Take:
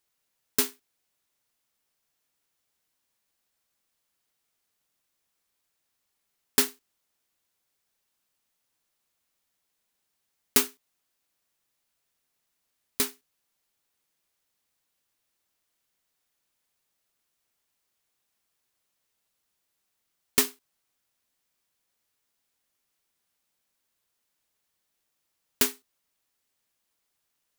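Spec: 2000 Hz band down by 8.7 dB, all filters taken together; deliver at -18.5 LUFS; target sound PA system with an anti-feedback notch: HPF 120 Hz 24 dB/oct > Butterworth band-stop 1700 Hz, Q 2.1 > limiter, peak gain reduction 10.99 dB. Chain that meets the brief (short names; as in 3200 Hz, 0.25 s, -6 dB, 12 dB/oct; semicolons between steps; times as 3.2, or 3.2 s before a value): HPF 120 Hz 24 dB/oct; Butterworth band-stop 1700 Hz, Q 2.1; bell 2000 Hz -6 dB; gain +15.5 dB; limiter -1 dBFS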